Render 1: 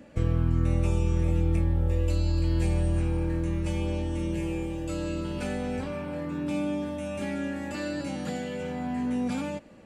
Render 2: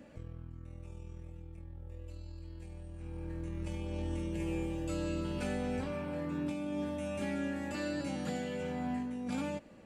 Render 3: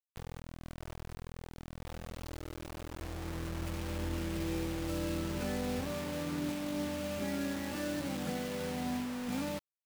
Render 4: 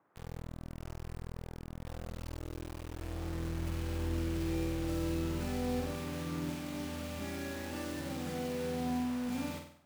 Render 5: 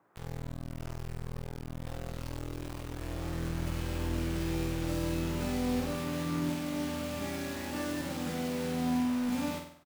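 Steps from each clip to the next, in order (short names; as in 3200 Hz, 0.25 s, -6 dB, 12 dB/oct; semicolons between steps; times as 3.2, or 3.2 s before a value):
negative-ratio compressor -30 dBFS, ratio -0.5; gain -7.5 dB
high shelf 3600 Hz -10 dB; bit-crush 7-bit
band noise 100–1400 Hz -70 dBFS; on a send: flutter echo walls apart 8.3 m, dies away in 0.57 s; on the sum: gain -4 dB
doubler 17 ms -7 dB; gain +3.5 dB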